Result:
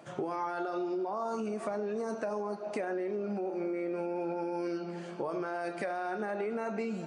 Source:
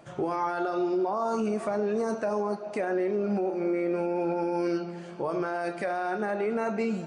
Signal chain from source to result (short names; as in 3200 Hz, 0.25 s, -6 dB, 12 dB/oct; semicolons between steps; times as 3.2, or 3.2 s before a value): compressor, threshold -31 dBFS, peak gain reduction 7.5 dB; HPF 150 Hz